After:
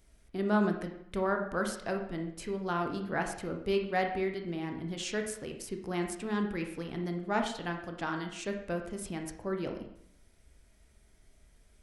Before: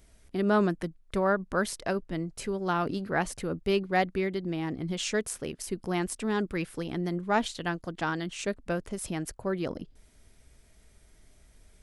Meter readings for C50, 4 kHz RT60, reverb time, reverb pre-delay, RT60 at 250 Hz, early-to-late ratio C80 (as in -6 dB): 6.5 dB, 0.60 s, 0.70 s, 16 ms, 0.75 s, 9.5 dB